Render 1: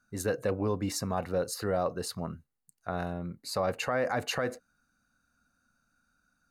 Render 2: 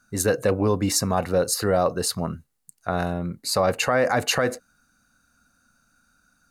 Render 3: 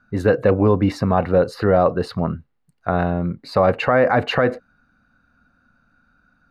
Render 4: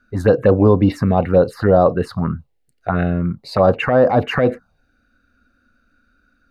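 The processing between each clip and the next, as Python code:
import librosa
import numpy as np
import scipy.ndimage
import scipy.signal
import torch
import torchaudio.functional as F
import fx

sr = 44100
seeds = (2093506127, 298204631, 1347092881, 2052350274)

y1 = fx.peak_eq(x, sr, hz=9200.0, db=5.0, octaves=1.9)
y1 = F.gain(torch.from_numpy(y1), 8.5).numpy()
y2 = fx.air_absorb(y1, sr, metres=400.0)
y2 = F.gain(torch.from_numpy(y2), 6.5).numpy()
y3 = fx.env_phaser(y2, sr, low_hz=150.0, high_hz=2200.0, full_db=-11.5)
y3 = F.gain(torch.from_numpy(y3), 4.0).numpy()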